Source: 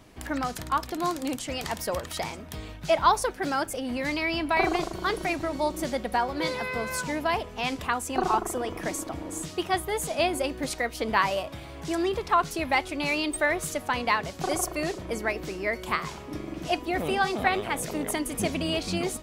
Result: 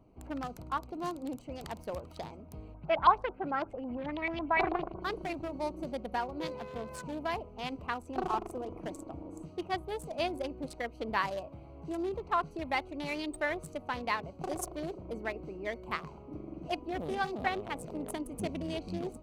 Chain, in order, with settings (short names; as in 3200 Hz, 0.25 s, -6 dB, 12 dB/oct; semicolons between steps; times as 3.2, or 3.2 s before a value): Wiener smoothing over 25 samples; 2.74–5.02 LFO low-pass saw up 9.1 Hz 810–3600 Hz; gain -7 dB